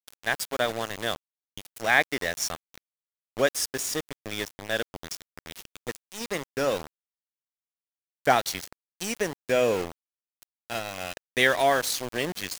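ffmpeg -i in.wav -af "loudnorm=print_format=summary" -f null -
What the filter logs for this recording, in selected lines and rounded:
Input Integrated:    -27.3 LUFS
Input True Peak:      -5.5 dBTP
Input LRA:             5.6 LU
Input Threshold:     -38.2 LUFS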